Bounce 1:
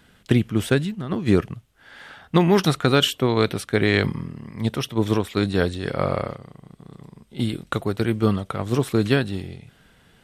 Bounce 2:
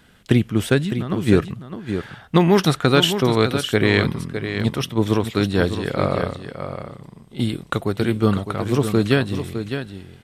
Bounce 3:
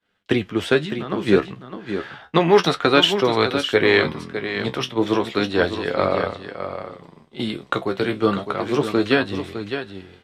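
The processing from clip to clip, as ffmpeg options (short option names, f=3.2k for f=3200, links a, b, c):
-af "aecho=1:1:608:0.355,volume=2dB"
-filter_complex "[0:a]agate=range=-33dB:threshold=-41dB:ratio=3:detection=peak,flanger=delay=10:depth=5.6:regen=45:speed=0.31:shape=sinusoidal,acrossover=split=280 5700:gain=0.251 1 0.178[a][b][c];[a][b][c]amix=inputs=3:normalize=0,volume=6.5dB"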